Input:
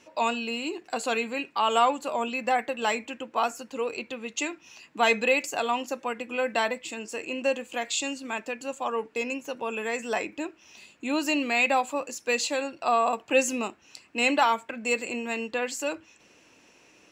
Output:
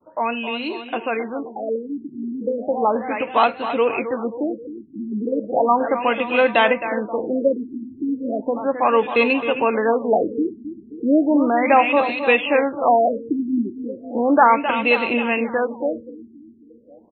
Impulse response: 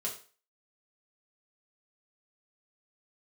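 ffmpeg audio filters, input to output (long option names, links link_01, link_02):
-filter_complex "[0:a]agate=range=-33dB:threshold=-55dB:ratio=3:detection=peak,asplit=2[link_01][link_02];[link_02]alimiter=limit=-19dB:level=0:latency=1,volume=-2.5dB[link_03];[link_01][link_03]amix=inputs=2:normalize=0,dynaudnorm=framelen=640:gausssize=7:maxgain=11.5dB,aecho=1:1:265|530|795|1060|1325|1590|1855:0.299|0.17|0.097|0.0553|0.0315|0.018|0.0102,afftfilt=real='re*lt(b*sr/1024,380*pow(4300/380,0.5+0.5*sin(2*PI*0.35*pts/sr)))':imag='im*lt(b*sr/1024,380*pow(4300/380,0.5+0.5*sin(2*PI*0.35*pts/sr)))':win_size=1024:overlap=0.75"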